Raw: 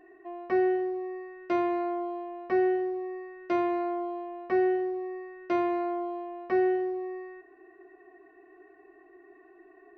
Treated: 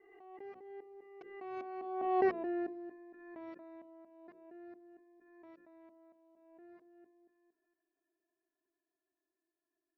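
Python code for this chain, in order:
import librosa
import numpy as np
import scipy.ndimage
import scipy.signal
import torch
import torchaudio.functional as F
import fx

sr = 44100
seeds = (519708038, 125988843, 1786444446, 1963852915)

y = fx.local_reverse(x, sr, ms=216.0)
y = fx.doppler_pass(y, sr, speed_mps=23, closest_m=2.0, pass_at_s=2.3)
y = fx.rider(y, sr, range_db=3, speed_s=0.5)
y = fx.hum_notches(y, sr, base_hz=60, count=9)
y = fx.pre_swell(y, sr, db_per_s=42.0)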